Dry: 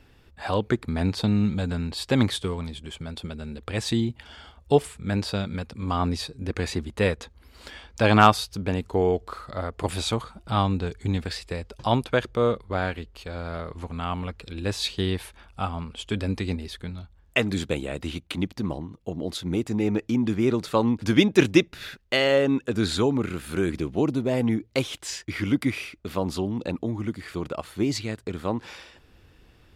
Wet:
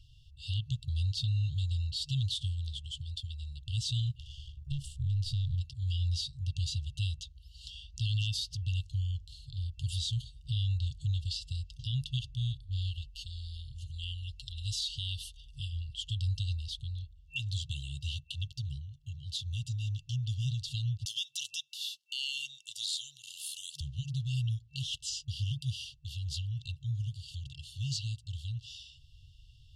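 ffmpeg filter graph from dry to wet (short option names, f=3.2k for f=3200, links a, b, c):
-filter_complex "[0:a]asettb=1/sr,asplit=3[a][b][c];[a]atrim=end=4.194[d];[b]atrim=start=4.19:end=5.61,asetpts=PTS-STARTPTS,afade=t=in:d=0.004:c=qsin,afade=t=out:st=1.416:d=0.004:c=qsin,aeval=exprs='if(lt(val(0),0),0.251*val(0),val(0))':c=same,equalizer=f=94:w=0.84:g=14,acompressor=threshold=-25dB:ratio=3:attack=3.2:release=140:knee=1:detection=peak[e];[c]atrim=start=5.606[f];[d][e]acrossfade=d=0.004:c1=hsin:c2=qsin[g];[g][f]acrossfade=d=0.004:c1=qsin:c2=hsin,asettb=1/sr,asplit=3[h][i][j];[h]atrim=end=13.014[k];[i]atrim=start=13.01:end=15.73,asetpts=PTS-STARTPTS,afade=t=in:d=0.004:c=qsin,afade=t=out:st=2.716:d=0.004:c=qsin,highshelf=f=8.4k:g=7,aecho=1:1:5.3:0.46,atrim=end_sample=119952[l];[j]atrim=start=15.726[m];[k][l]acrossfade=d=0.004:c1=hsin:c2=qsin[n];[n][m]acrossfade=d=0.004:c1=qsin:c2=hsin,asettb=1/sr,asplit=3[o][p][q];[o]atrim=end=21.054[r];[p]atrim=start=21.05:end=23.81,asetpts=PTS-STARTPTS,afade=t=in:d=0.004:c=qsin,afade=t=out:st=2.756:d=0.004:c=qsin,highpass=650,aemphasis=mode=production:type=bsi[s];[q]atrim=start=23.806[t];[r][s]acrossfade=d=0.004:c1=hsin:c2=qsin[u];[u][t]acrossfade=d=0.004:c1=qsin:c2=hsin,lowpass=6.9k,afftfilt=real='re*(1-between(b*sr/4096,150,2700))':imag='im*(1-between(b*sr/4096,150,2700))':win_size=4096:overlap=0.75,alimiter=level_in=1dB:limit=-24dB:level=0:latency=1:release=99,volume=-1dB"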